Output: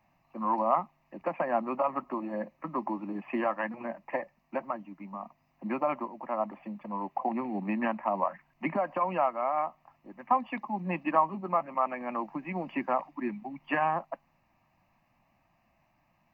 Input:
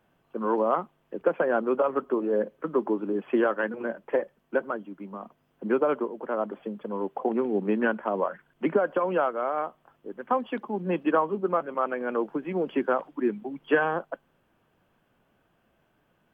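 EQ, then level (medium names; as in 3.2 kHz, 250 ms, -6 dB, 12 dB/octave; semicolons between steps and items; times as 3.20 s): peaking EQ 700 Hz +2 dB; peaking EQ 2.6 kHz +4 dB 2.6 oct; static phaser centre 2.2 kHz, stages 8; 0.0 dB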